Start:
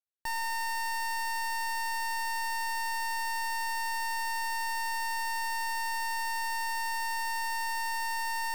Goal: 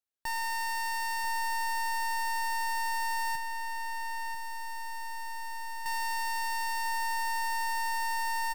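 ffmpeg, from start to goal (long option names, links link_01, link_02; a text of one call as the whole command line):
ffmpeg -i in.wav -filter_complex "[0:a]asettb=1/sr,asplit=3[link_01][link_02][link_03];[link_01]atrim=end=3.354[link_04];[link_02]atrim=start=3.35:end=5.86,asetpts=PTS-STARTPTS,afade=type=in:duration=0.004:curve=qsin,afade=type=out:start_time=2.506:duration=0.004:curve=qsin,acrossover=split=200|3100[link_05][link_06][link_07];[link_05]acompressor=threshold=-43dB:ratio=4[link_08];[link_06]acompressor=threshold=-41dB:ratio=4[link_09];[link_07]acompressor=threshold=-47dB:ratio=4[link_10];[link_08][link_09][link_10]amix=inputs=3:normalize=0[link_11];[link_03]atrim=start=5.856[link_12];[link_04][link_11]acrossfade=duration=0.004:curve1=hsin:curve2=qsin[link_13];[link_13][link_12]acrossfade=duration=0.004:curve1=qsin:curve2=hsin,asplit=2[link_14][link_15];[link_15]adelay=991.3,volume=-8dB,highshelf=frequency=4000:gain=-22.3[link_16];[link_14][link_16]amix=inputs=2:normalize=0" out.wav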